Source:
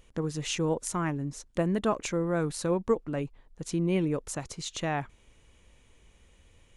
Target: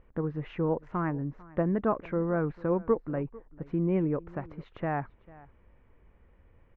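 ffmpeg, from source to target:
-af "lowpass=f=1800:w=0.5412,lowpass=f=1800:w=1.3066,aecho=1:1:447:0.0841"

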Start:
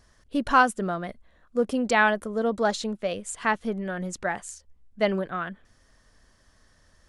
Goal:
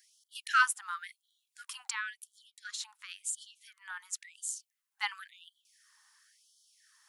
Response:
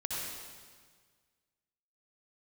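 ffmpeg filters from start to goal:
-filter_complex "[0:a]highshelf=f=8100:g=12,asettb=1/sr,asplit=3[s0][s1][s2];[s0]atrim=end=1.884[s3];[s1]atrim=start=1.88:end=4.41,asetpts=PTS-STARTPTS,afade=t=in:d=0.004:c=qsin,afade=t=out:st=2.526:d=0.004:c=qsin,acompressor=threshold=0.0355:ratio=6[s4];[s2]atrim=start=4.406[s5];[s3][s4]acrossfade=d=0.004:c1=hsin:c2=qsin[s6];[s6][s5]acrossfade=d=0.004:c1=qsin:c2=hsin,afftfilt=real='re*gte(b*sr/1024,760*pow(3000/760,0.5+0.5*sin(2*PI*0.95*pts/sr)))':imag='im*gte(b*sr/1024,760*pow(3000/760,0.5+0.5*sin(2*PI*0.95*pts/sr)))':win_size=1024:overlap=0.75,volume=0.75"

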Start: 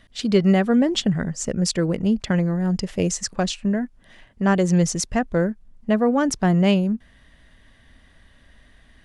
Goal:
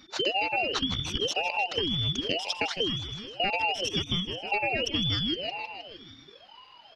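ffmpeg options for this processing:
-filter_complex "[0:a]afftfilt=real='real(if(between(b,1,1012),(2*floor((b-1)/92)+1)*92-b,b),0)':imag='imag(if(between(b,1,1012),(2*floor((b-1)/92)+1)*92-b,b),0)*if(between(b,1,1012),-1,1)':win_size=2048:overlap=0.75,highpass=100,highshelf=f=5500:t=q:w=3:g=-11.5,acrossover=split=150|3000[s0][s1][s2];[s0]acompressor=threshold=0.00708:ratio=2[s3];[s3][s1][s2]amix=inputs=3:normalize=0,atempo=1.3,aecho=1:1:156|312|468|624|780|936:0.224|0.13|0.0753|0.0437|0.0253|0.0147,acrossover=split=290|800[s4][s5][s6];[s4]asoftclip=type=tanh:threshold=0.015[s7];[s7][s5][s6]amix=inputs=3:normalize=0,acompressor=threshold=0.0708:ratio=5,aeval=exprs='val(0)*sin(2*PI*1300*n/s+1300*0.3/0.97*sin(2*PI*0.97*n/s))':c=same"

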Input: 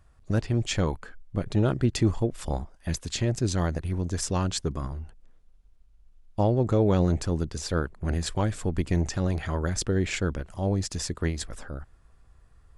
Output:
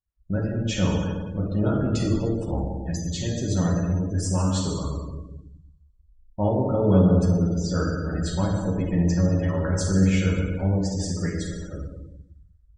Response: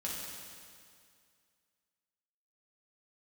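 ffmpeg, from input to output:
-filter_complex "[1:a]atrim=start_sample=2205[s0];[0:a][s0]afir=irnorm=-1:irlink=0,afftdn=nr=32:nf=-37"

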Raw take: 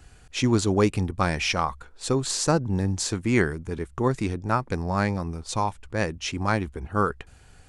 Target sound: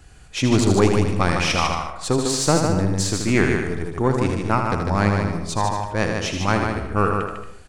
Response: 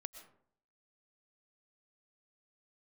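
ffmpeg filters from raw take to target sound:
-filter_complex "[0:a]aeval=exprs='0.473*(cos(1*acos(clip(val(0)/0.473,-1,1)))-cos(1*PI/2))+0.0422*(cos(4*acos(clip(val(0)/0.473,-1,1)))-cos(4*PI/2))':c=same,aecho=1:1:79:0.473,asplit=2[s0][s1];[1:a]atrim=start_sample=2205,adelay=150[s2];[s1][s2]afir=irnorm=-1:irlink=0,volume=0.944[s3];[s0][s3]amix=inputs=2:normalize=0,volume=1.33"

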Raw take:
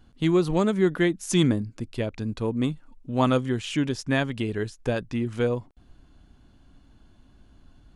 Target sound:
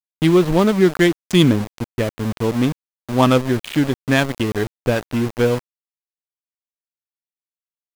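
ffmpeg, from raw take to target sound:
-af "adynamicsmooth=sensitivity=4.5:basefreq=870,adynamicequalizer=threshold=0.00562:dfrequency=3200:dqfactor=1.5:tfrequency=3200:tqfactor=1.5:attack=5:release=100:ratio=0.375:range=1.5:mode=boostabove:tftype=bell,aeval=exprs='val(0)*gte(abs(val(0)),0.0282)':c=same,volume=2.37"

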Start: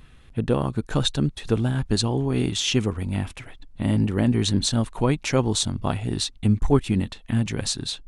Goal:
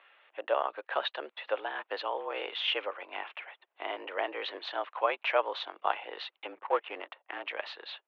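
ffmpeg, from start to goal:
-filter_complex "[0:a]asettb=1/sr,asplit=3[s0][s1][s2];[s0]atrim=end=6.524[s3];[s1]atrim=start=6.52:end=7.44,asetpts=PTS-STARTPTS,afade=t=in:d=0.004:c=qsin,afade=t=out:st=0.916:d=0.004:c=qsin,adynamicsmooth=sensitivity=5.5:basefreq=780[s4];[s2]atrim=start=7.436[s5];[s3][s4]acrossfade=d=0.004:c1=hsin:c2=qsin[s6];[s6][s5]acrossfade=d=0.004:c1=qsin:c2=hsin,highpass=f=520:t=q:w=0.5412,highpass=f=520:t=q:w=1.307,lowpass=f=3000:t=q:w=0.5176,lowpass=f=3000:t=q:w=0.7071,lowpass=f=3000:t=q:w=1.932,afreqshift=82"

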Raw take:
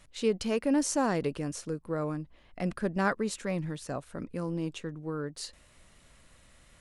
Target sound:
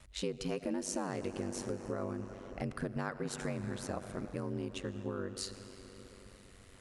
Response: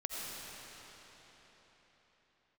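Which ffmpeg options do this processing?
-filter_complex "[0:a]asplit=2[s0][s1];[1:a]atrim=start_sample=2205[s2];[s1][s2]afir=irnorm=-1:irlink=0,volume=0.251[s3];[s0][s3]amix=inputs=2:normalize=0,acompressor=threshold=0.0251:ratio=6,aeval=exprs='val(0)*sin(2*PI*48*n/s)':c=same,volume=1.12"

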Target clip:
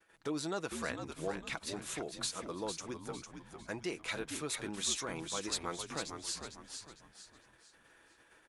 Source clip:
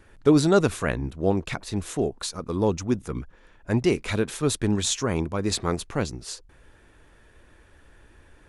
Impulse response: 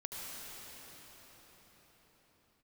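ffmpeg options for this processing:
-filter_complex "[0:a]acompressor=threshold=0.01:ratio=2,aecho=1:1:6.1:0.37,agate=range=0.0224:threshold=0.00562:ratio=3:detection=peak,highpass=f=750:p=1,asplit=2[s0][s1];[s1]asplit=4[s2][s3][s4][s5];[s2]adelay=453,afreqshift=-75,volume=0.447[s6];[s3]adelay=906,afreqshift=-150,volume=0.166[s7];[s4]adelay=1359,afreqshift=-225,volume=0.061[s8];[s5]adelay=1812,afreqshift=-300,volume=0.0226[s9];[s6][s7][s8][s9]amix=inputs=4:normalize=0[s10];[s0][s10]amix=inputs=2:normalize=0,volume=1.12"

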